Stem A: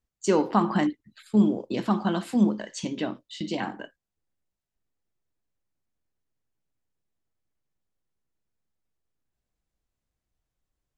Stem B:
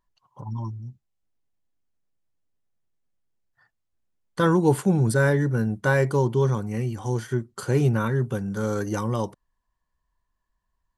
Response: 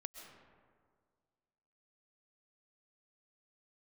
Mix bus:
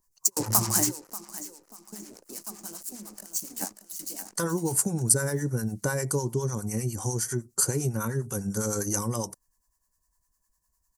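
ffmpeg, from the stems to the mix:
-filter_complex "[0:a]highpass=200,acompressor=threshold=-25dB:ratio=10,acrusher=bits=5:mix=0:aa=0.5,volume=2.5dB,asplit=2[a][b];[b]volume=-16dB[c];[1:a]acompressor=threshold=-24dB:ratio=6,lowpass=f=3.5k:p=1,volume=2dB,asplit=2[d][e];[e]apad=whole_len=484126[f];[a][f]sidechaingate=range=-43dB:threshold=-59dB:ratio=16:detection=peak[g];[c]aecho=0:1:586|1172|1758|2344|2930:1|0.37|0.137|0.0507|0.0187[h];[g][d][h]amix=inputs=3:normalize=0,acrossover=split=710[i][j];[i]aeval=exprs='val(0)*(1-0.7/2+0.7/2*cos(2*PI*9.9*n/s))':c=same[k];[j]aeval=exprs='val(0)*(1-0.7/2-0.7/2*cos(2*PI*9.9*n/s))':c=same[l];[k][l]amix=inputs=2:normalize=0,aexciter=amount=14.3:drive=7.9:freq=5.3k"

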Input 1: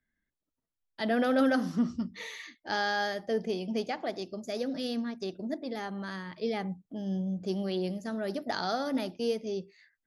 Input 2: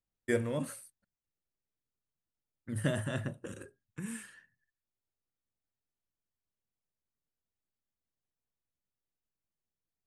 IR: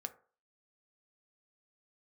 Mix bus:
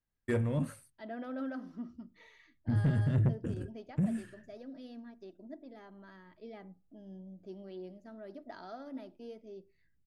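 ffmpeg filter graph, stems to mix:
-filter_complex "[0:a]highshelf=f=4.9k:g=-6.5,aecho=1:1:3.1:0.42,volume=-16.5dB,asplit=3[a][b][c];[b]volume=-7dB[d];[1:a]asubboost=boost=11:cutoff=230,volume=1dB[e];[c]apad=whole_len=443677[f];[e][f]sidechaincompress=threshold=-48dB:ratio=8:attack=6.8:release=221[g];[2:a]atrim=start_sample=2205[h];[d][h]afir=irnorm=-1:irlink=0[i];[a][g][i]amix=inputs=3:normalize=0,highshelf=f=3.1k:g=-10.5,asoftclip=type=tanh:threshold=-22dB"

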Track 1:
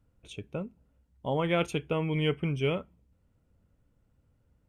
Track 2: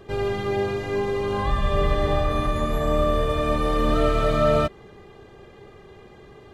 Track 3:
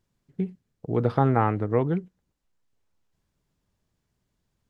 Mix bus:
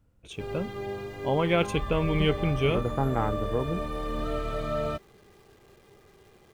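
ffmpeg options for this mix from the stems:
-filter_complex "[0:a]volume=3dB[a];[1:a]acrusher=bits=9:dc=4:mix=0:aa=0.000001,adelay=300,volume=-10.5dB[b];[2:a]afwtdn=0.0282,adelay=1800,volume=-6dB[c];[a][b][c]amix=inputs=3:normalize=0"

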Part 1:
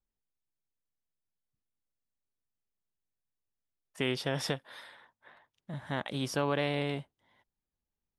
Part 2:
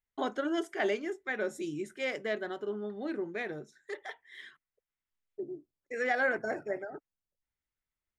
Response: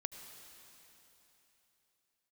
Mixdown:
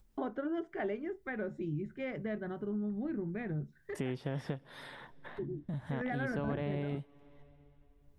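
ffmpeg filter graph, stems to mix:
-filter_complex "[0:a]acrossover=split=2600[a][b];[b]acompressor=threshold=-49dB:ratio=4:attack=1:release=60[c];[a][c]amix=inputs=2:normalize=0,agate=range=-33dB:threshold=-58dB:ratio=3:detection=peak,acompressor=mode=upward:threshold=-40dB:ratio=2.5,volume=-2dB,asplit=2[d][e];[e]volume=-18.5dB[f];[1:a]lowpass=2k,asubboost=boost=11:cutoff=140,volume=1dB[g];[2:a]atrim=start_sample=2205[h];[f][h]afir=irnorm=-1:irlink=0[i];[d][g][i]amix=inputs=3:normalize=0,lowshelf=f=400:g=11.5,acompressor=threshold=-41dB:ratio=2"

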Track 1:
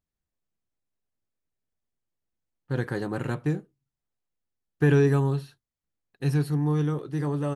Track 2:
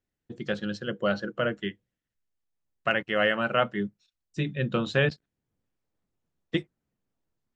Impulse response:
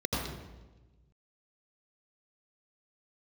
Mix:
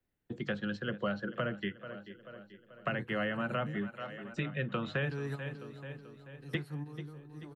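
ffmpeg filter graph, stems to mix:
-filter_complex "[0:a]adelay=200,volume=-9.5dB,asplit=2[a][b];[b]volume=-18.5dB[c];[1:a]equalizer=f=6.1k:t=o:w=1.3:g=-9,acrossover=split=420[d][e];[d]acompressor=threshold=-25dB:ratio=6[f];[f][e]amix=inputs=2:normalize=0,volume=2.5dB,asplit=3[g][h][i];[h]volume=-19.5dB[j];[i]apad=whole_len=341781[k];[a][k]sidechaingate=range=-13dB:threshold=-56dB:ratio=16:detection=peak[l];[c][j]amix=inputs=2:normalize=0,aecho=0:1:436|872|1308|1744|2180|2616|3052:1|0.51|0.26|0.133|0.0677|0.0345|0.0176[m];[l][g][m]amix=inputs=3:normalize=0,acrossover=split=96|230|650|3000[n][o][p][q][r];[n]acompressor=threshold=-57dB:ratio=4[s];[o]acompressor=threshold=-38dB:ratio=4[t];[p]acompressor=threshold=-44dB:ratio=4[u];[q]acompressor=threshold=-37dB:ratio=4[v];[r]acompressor=threshold=-55dB:ratio=4[w];[s][t][u][v][w]amix=inputs=5:normalize=0"

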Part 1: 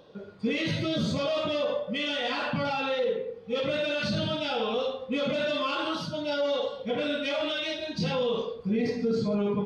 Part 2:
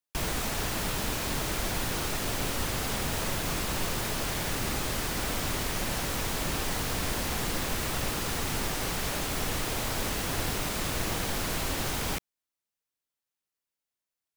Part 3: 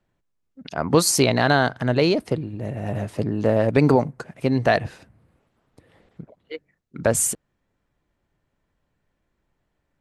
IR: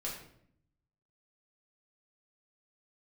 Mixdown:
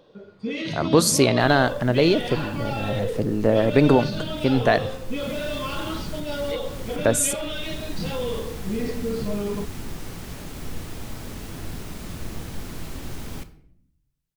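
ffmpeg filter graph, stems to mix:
-filter_complex "[0:a]volume=-2dB[a];[1:a]acrossover=split=290[b][c];[c]acompressor=threshold=-47dB:ratio=2[d];[b][d]amix=inputs=2:normalize=0,adelay=1250,volume=-2.5dB,asplit=2[e][f];[f]volume=-8dB[g];[2:a]volume=-1.5dB,asplit=3[h][i][j];[i]volume=-16.5dB[k];[j]apad=whole_len=688577[l];[e][l]sidechaincompress=threshold=-36dB:ratio=8:attack=6.7:release=390[m];[3:a]atrim=start_sample=2205[n];[g][k]amix=inputs=2:normalize=0[o];[o][n]afir=irnorm=-1:irlink=0[p];[a][m][h][p]amix=inputs=4:normalize=0,equalizer=f=330:t=o:w=0.77:g=2.5"

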